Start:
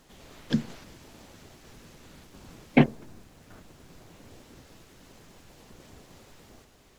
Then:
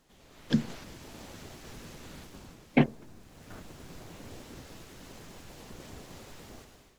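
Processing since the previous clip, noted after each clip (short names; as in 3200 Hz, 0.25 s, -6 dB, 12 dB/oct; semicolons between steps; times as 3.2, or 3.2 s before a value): AGC gain up to 13 dB; gain -8.5 dB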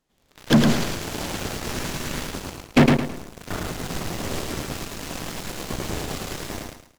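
sample leveller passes 5; on a send: feedback echo 0.109 s, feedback 31%, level -3.5 dB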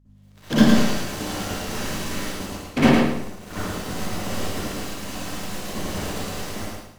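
hum 50 Hz, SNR 23 dB; reverb RT60 0.50 s, pre-delay 51 ms, DRR -10 dB; gain -9.5 dB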